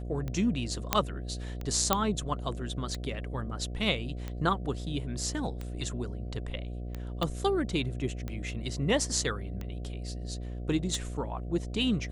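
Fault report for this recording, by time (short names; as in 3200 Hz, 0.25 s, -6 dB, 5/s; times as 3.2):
buzz 60 Hz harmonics 12 -37 dBFS
tick 45 rpm -23 dBFS
0.93 pop -6 dBFS
1.93 pop -7 dBFS
7.23 pop -17 dBFS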